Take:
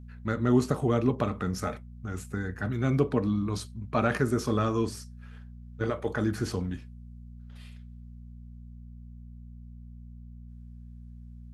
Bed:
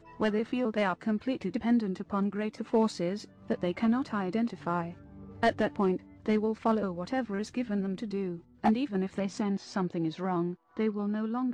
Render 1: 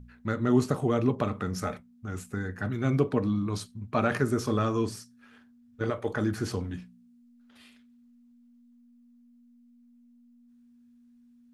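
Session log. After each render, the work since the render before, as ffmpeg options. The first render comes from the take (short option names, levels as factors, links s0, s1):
-af "bandreject=f=60:t=h:w=4,bandreject=f=120:t=h:w=4,bandreject=f=180:t=h:w=4"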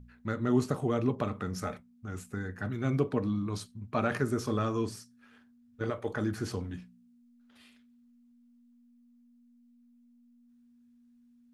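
-af "volume=0.668"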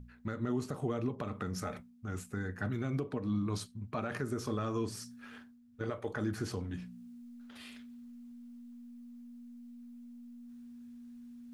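-af "areverse,acompressor=mode=upward:threshold=0.01:ratio=2.5,areverse,alimiter=level_in=1.12:limit=0.0631:level=0:latency=1:release=194,volume=0.891"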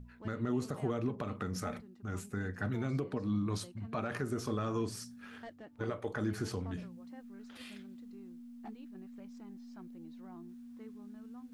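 -filter_complex "[1:a]volume=0.0668[s0];[0:a][s0]amix=inputs=2:normalize=0"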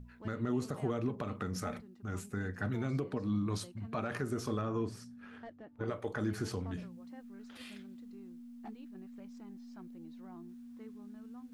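-filter_complex "[0:a]asettb=1/sr,asplit=3[s0][s1][s2];[s0]atrim=end=4.614[s3];[s1]atrim=start=4.61:end=5.88,asetpts=PTS-STARTPTS,afade=t=in:d=0.004:c=qsin,afade=t=out:st=1.266:d=0.004:c=qsin,highshelf=f=3000:g=-12[s4];[s2]atrim=start=5.876[s5];[s3][s4]acrossfade=d=0.004:c1=hsin:c2=qsin[s6];[s6][s5]acrossfade=d=0.004:c1=qsin:c2=hsin"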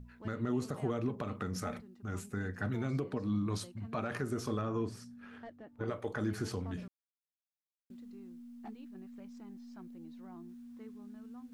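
-filter_complex "[0:a]asplit=3[s0][s1][s2];[s0]atrim=end=6.88,asetpts=PTS-STARTPTS,afade=t=out:st=6.876:d=0.004:c=hsin[s3];[s1]atrim=start=6.88:end=7.9,asetpts=PTS-STARTPTS,volume=0[s4];[s2]atrim=start=7.9,asetpts=PTS-STARTPTS,afade=t=in:d=0.004:c=hsin[s5];[s3][s4][s5]concat=n=3:v=0:a=1"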